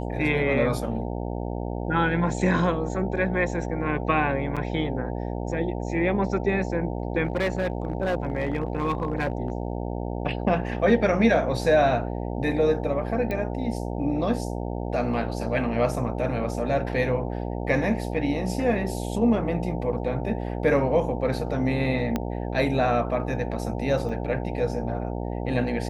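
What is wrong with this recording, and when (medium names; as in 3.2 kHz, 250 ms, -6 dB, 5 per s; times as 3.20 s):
buzz 60 Hz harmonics 15 -30 dBFS
4.56–4.57 s: dropout 6.4 ms
7.25–9.75 s: clipped -20 dBFS
13.31 s: pop -17 dBFS
22.16 s: pop -12 dBFS
24.09 s: dropout 2.4 ms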